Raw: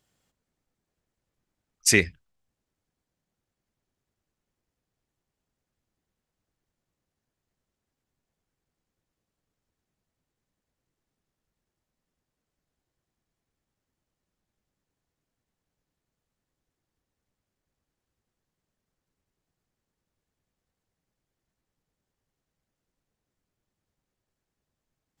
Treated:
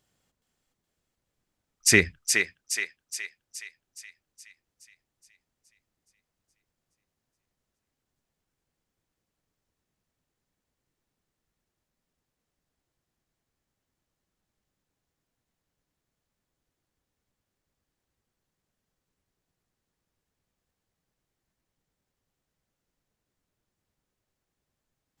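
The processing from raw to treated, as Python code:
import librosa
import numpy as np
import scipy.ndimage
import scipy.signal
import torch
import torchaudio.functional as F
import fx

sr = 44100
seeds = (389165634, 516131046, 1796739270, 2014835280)

y = fx.echo_thinned(x, sr, ms=420, feedback_pct=56, hz=790.0, wet_db=-4.0)
y = fx.dynamic_eq(y, sr, hz=1400.0, q=1.6, threshold_db=-40.0, ratio=4.0, max_db=5)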